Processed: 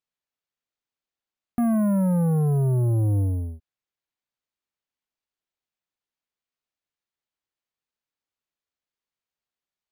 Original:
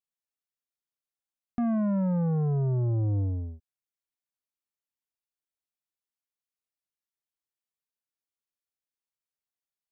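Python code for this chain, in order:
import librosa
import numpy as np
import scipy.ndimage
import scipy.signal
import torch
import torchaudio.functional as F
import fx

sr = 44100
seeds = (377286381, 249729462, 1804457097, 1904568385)

y = np.repeat(scipy.signal.resample_poly(x, 1, 4), 4)[:len(x)]
y = F.gain(torch.from_numpy(y), 5.0).numpy()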